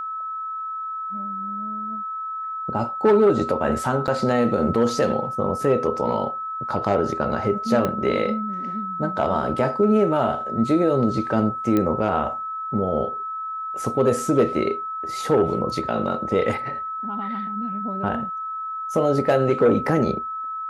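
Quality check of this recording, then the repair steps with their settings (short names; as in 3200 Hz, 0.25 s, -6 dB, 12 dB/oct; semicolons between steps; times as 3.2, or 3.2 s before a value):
tone 1300 Hz -27 dBFS
4.07–4.08 gap 9.1 ms
7.85 pop -10 dBFS
11.77 pop -10 dBFS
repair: de-click; notch 1300 Hz, Q 30; interpolate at 4.07, 9.1 ms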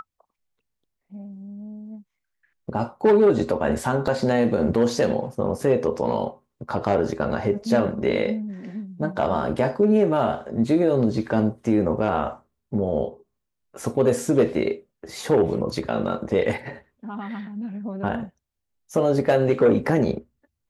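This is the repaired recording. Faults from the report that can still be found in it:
7.85 pop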